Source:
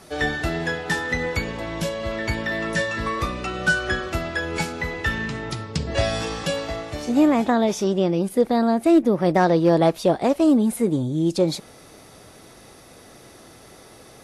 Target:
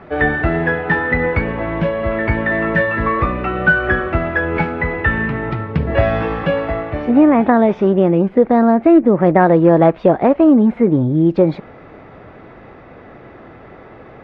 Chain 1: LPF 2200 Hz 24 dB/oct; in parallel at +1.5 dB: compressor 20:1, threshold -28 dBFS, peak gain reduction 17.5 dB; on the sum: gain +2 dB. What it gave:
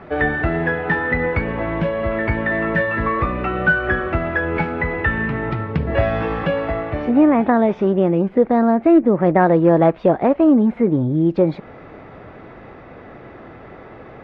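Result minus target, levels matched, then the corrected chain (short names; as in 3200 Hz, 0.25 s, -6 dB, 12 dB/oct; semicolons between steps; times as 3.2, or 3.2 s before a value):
compressor: peak gain reduction +10 dB
LPF 2200 Hz 24 dB/oct; in parallel at +1.5 dB: compressor 20:1, threshold -17.5 dBFS, peak gain reduction 7.5 dB; on the sum: gain +2 dB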